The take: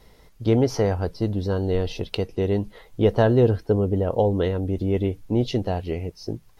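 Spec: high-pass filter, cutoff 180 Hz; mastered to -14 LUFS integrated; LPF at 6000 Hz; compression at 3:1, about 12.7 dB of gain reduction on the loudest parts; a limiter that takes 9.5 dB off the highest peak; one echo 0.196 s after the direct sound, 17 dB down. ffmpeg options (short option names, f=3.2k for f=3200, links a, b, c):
-af "highpass=180,lowpass=6k,acompressor=threshold=-32dB:ratio=3,alimiter=limit=-23.5dB:level=0:latency=1,aecho=1:1:196:0.141,volume=22dB"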